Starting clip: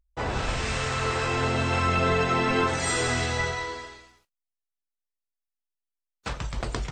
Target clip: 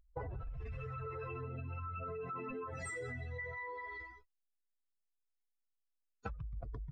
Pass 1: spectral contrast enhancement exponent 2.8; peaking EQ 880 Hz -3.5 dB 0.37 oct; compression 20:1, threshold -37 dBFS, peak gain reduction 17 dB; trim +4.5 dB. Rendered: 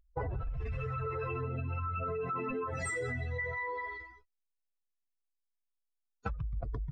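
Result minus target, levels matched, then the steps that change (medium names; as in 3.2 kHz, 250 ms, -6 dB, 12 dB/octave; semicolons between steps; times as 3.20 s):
compression: peak gain reduction -7 dB
change: compression 20:1, threshold -44.5 dBFS, peak gain reduction 24 dB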